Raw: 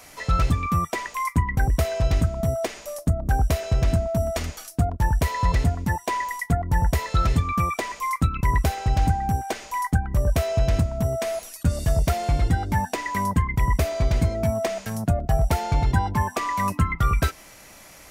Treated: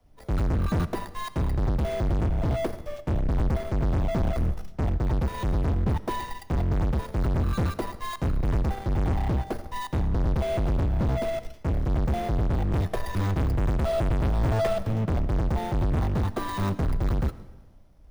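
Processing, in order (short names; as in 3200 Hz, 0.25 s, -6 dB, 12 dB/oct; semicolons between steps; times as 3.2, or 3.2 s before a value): FFT order left unsorted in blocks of 16 samples; 12.71–14.92 comb 1.7 ms, depth 88%; tilt -4.5 dB/oct; sample leveller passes 2; soft clip -17.5 dBFS, distortion -3 dB; digital reverb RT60 1.4 s, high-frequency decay 0.85×, pre-delay 45 ms, DRR 14 dB; three-band expander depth 40%; gain -5 dB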